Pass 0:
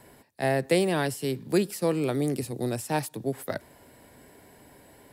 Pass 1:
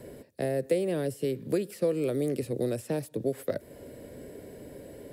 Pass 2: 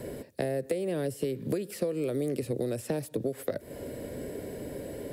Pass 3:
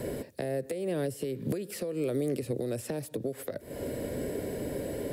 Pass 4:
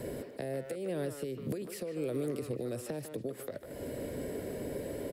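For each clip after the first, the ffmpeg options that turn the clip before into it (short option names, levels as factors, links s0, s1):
-filter_complex "[0:a]acrossover=split=790|3500|7100[s0][s1][s2][s3];[s0]acompressor=threshold=0.01:ratio=4[s4];[s1]acompressor=threshold=0.00708:ratio=4[s5];[s2]acompressor=threshold=0.00112:ratio=4[s6];[s3]acompressor=threshold=0.00355:ratio=4[s7];[s4][s5][s6][s7]amix=inputs=4:normalize=0,lowshelf=f=670:t=q:w=3:g=7.5"
-af "acompressor=threshold=0.02:ratio=6,volume=2.11"
-af "alimiter=level_in=1.33:limit=0.0631:level=0:latency=1:release=351,volume=0.75,volume=1.58"
-filter_complex "[0:a]asplit=2[s0][s1];[s1]adelay=150,highpass=300,lowpass=3400,asoftclip=type=hard:threshold=0.0266,volume=0.501[s2];[s0][s2]amix=inputs=2:normalize=0,volume=0.596"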